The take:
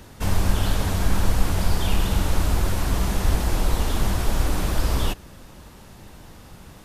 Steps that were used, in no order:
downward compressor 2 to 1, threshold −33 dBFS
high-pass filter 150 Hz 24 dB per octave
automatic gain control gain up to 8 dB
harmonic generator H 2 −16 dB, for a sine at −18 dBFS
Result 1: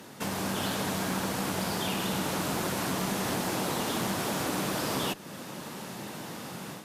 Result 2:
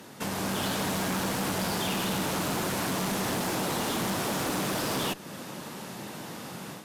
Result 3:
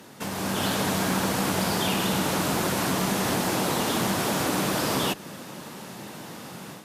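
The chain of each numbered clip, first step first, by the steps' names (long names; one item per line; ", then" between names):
automatic gain control, then high-pass filter, then downward compressor, then harmonic generator
high-pass filter, then automatic gain control, then harmonic generator, then downward compressor
high-pass filter, then downward compressor, then harmonic generator, then automatic gain control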